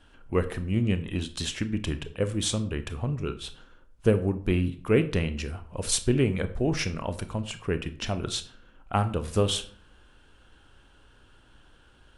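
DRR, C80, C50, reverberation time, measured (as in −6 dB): 10.5 dB, 18.5 dB, 14.5 dB, 0.50 s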